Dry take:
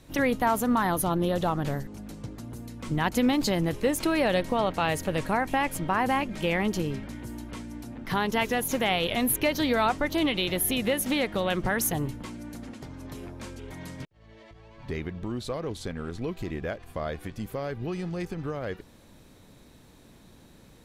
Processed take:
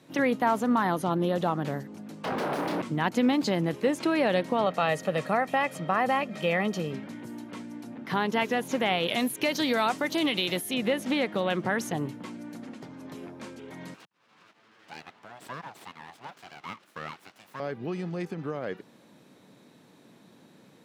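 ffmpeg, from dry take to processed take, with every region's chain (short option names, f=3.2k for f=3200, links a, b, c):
-filter_complex "[0:a]asettb=1/sr,asplit=3[a][b][c];[a]atrim=end=2.244[d];[b]atrim=start=2.24:end=2.82,asetpts=PTS-STARTPTS,afade=t=in:d=0.004:c=qsin,afade=t=out:st=0.576:d=0.004:c=qsin,aeval=exprs='0.0501*sin(PI/2*8.91*val(0)/0.0501)':c=same,equalizer=f=7.2k:t=o:w=0.86:g=-12,asplit=2[e][f];[f]adelay=28,volume=-6.5dB[g];[e][g]amix=inputs=2:normalize=0,atrim=end_sample=25578[h];[c]atrim=start=2.816[i];[d][h]acrossfade=d=0.004:c1=hsin:c2=qsin[j];[j][i]acrossfade=d=0.004:c1=qsin:c2=hsin,asettb=1/sr,asplit=3[k][l][m];[k]atrim=end=4.664[n];[l]atrim=start=4.66:end=6.93,asetpts=PTS-STARTPTS,afade=t=in:d=0.004:c=qsin,afade=t=out:st=2.266:d=0.004:c=qsin,highpass=120,aecho=1:1:1.6:0.51,atrim=end_sample=100107[o];[m]atrim=start=6.926[p];[n][o]acrossfade=d=0.004:c1=hsin:c2=qsin[q];[q][p]acrossfade=d=0.004:c1=qsin:c2=hsin,asettb=1/sr,asplit=3[r][s][t];[r]atrim=end=9.084[u];[s]atrim=start=9.08:end=10.74,asetpts=PTS-STARTPTS,afade=t=in:d=0.004:c=qsin,afade=t=out:st=1.656:d=0.004:c=qsin,aemphasis=mode=production:type=75fm,acompressor=threshold=-20dB:ratio=2:attack=3.2:release=140:knee=1:detection=peak[v];[t]atrim=start=10.736[w];[u][v]acrossfade=d=0.004:c1=hsin:c2=qsin[x];[x][w]acrossfade=d=0.004:c1=qsin:c2=hsin,asettb=1/sr,asplit=3[y][z][aa];[y]atrim=end=13.944[ab];[z]atrim=start=13.94:end=17.6,asetpts=PTS-STARTPTS,afade=t=in:d=0.004:c=qsin,afade=t=out:st=3.656:d=0.004:c=qsin,highpass=f=410:w=0.5412,highpass=f=410:w=1.3066,aeval=exprs='abs(val(0))':c=same[ac];[aa]atrim=start=17.596[ad];[ab][ac]acrossfade=d=0.004:c1=hsin:c2=qsin[ae];[ae][ad]acrossfade=d=0.004:c1=qsin:c2=hsin,highpass=f=150:w=0.5412,highpass=f=150:w=1.3066,acrossover=split=9000[af][ag];[ag]acompressor=threshold=-48dB:ratio=4:attack=1:release=60[ah];[af][ah]amix=inputs=2:normalize=0,highshelf=f=5.4k:g=-8"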